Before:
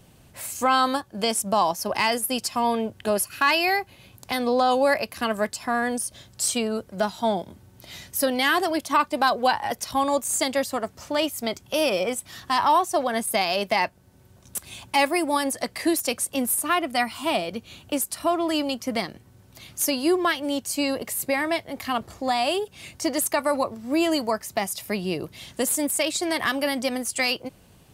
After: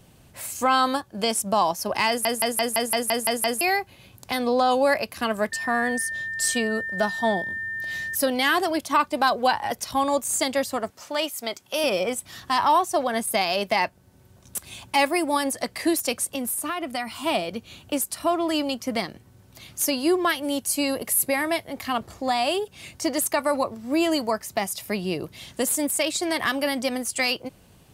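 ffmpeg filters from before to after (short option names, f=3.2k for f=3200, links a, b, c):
-filter_complex "[0:a]asettb=1/sr,asplit=3[a][b][c];[a]atrim=end=5.524[d];[b]atrim=start=5.52:end=8.15,asetpts=PTS-STARTPTS,afade=t=in:d=0.004:c=qsin,afade=t=out:st=2.626:d=0.004:c=qsin,aeval=exprs='val(0)+0.0398*sin(2*PI*1800*n/s)':c=same[e];[c]atrim=start=8.146[f];[d][e]acrossfade=d=0.004:c1=hsin:c2=qsin[g];[g][f]acrossfade=d=0.004:c1=qsin:c2=hsin,asettb=1/sr,asplit=3[h][i][j];[h]atrim=end=10.904[k];[i]atrim=start=10.9:end=11.84,asetpts=PTS-STARTPTS,afade=t=in:d=0.004:c=qsin,afade=t=out:st=0.936:d=0.004:c=qsin,highpass=f=540:p=1[l];[j]atrim=start=11.836[m];[k][l]acrossfade=d=0.004:c1=hsin:c2=qsin[n];[n][m]acrossfade=d=0.004:c1=qsin:c2=hsin,asettb=1/sr,asplit=3[o][p][q];[o]atrim=end=16.354[r];[p]atrim=start=16.35:end=17.24,asetpts=PTS-STARTPTS,afade=t=in:d=0.004:c=qsin,afade=t=out:st=0.886:d=0.004:c=qsin,acompressor=threshold=-24dB:ratio=6:attack=3.2:release=140:knee=1:detection=peak[s];[q]atrim=start=17.236[t];[r][s]acrossfade=d=0.004:c1=hsin:c2=qsin[u];[u][t]acrossfade=d=0.004:c1=qsin:c2=hsin,asettb=1/sr,asplit=3[v][w][x];[v]atrim=end=20.294[y];[w]atrim=start=20.29:end=21.69,asetpts=PTS-STARTPTS,afade=t=in:d=0.004:c=qsin,afade=t=out:st=1.396:d=0.004:c=qsin,equalizer=f=11k:w=2.2:g=10.5[z];[x]atrim=start=21.686[aa];[y][z]acrossfade=d=0.004:c1=hsin:c2=qsin[ab];[ab][aa]acrossfade=d=0.004:c1=qsin:c2=hsin,asplit=10[ac][ad][ae][af][ag][ah][ai][aj][ak][al];[ac]atrim=end=2.252[am];[ad]atrim=start=2.078:end=2.252[an];[ae]atrim=start=2.078:end=2.252[ao];[af]atrim=start=2.078:end=2.252[ap];[ag]atrim=start=2.078:end=2.252[aq];[ah]atrim=start=2.078:end=2.252[ar];[ai]atrim=start=2.078:end=2.252[as];[aj]atrim=start=2.078:end=2.252[at];[ak]atrim=start=2.078:end=2.252[au];[al]atrim=start=3.608[av];[am][an]acrossfade=d=0.004:c1=hsin:c2=hsin[aw];[aw][ao]acrossfade=d=0.004:c1=hsin:c2=hsin[ax];[ax][ap]acrossfade=d=0.004:c1=hsin:c2=hsin[ay];[ay][aq]acrossfade=d=0.004:c1=hsin:c2=hsin[az];[az][ar]acrossfade=d=0.004:c1=hsin:c2=hsin[ba];[ba][as]acrossfade=d=0.004:c1=hsin:c2=hsin[bb];[bb][at]acrossfade=d=0.004:c1=hsin:c2=hsin[bc];[bc][au]acrossfade=d=0.004:c1=hsin:c2=hsin[bd];[bd][av]acrossfade=d=0.004:c1=hsin:c2=hsin"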